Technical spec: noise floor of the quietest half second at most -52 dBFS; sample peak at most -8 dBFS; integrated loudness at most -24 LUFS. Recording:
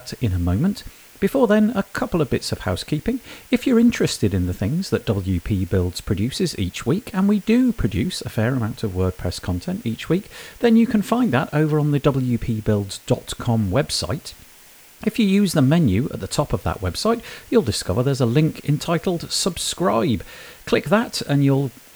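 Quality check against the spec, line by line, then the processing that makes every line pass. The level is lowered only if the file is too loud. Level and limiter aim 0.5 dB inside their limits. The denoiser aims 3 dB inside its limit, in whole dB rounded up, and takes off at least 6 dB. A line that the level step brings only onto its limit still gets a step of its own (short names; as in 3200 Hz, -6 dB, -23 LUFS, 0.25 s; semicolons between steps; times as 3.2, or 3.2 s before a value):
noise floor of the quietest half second -47 dBFS: fail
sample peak -3.0 dBFS: fail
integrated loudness -21.0 LUFS: fail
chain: denoiser 6 dB, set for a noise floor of -47 dBFS; gain -3.5 dB; limiter -8.5 dBFS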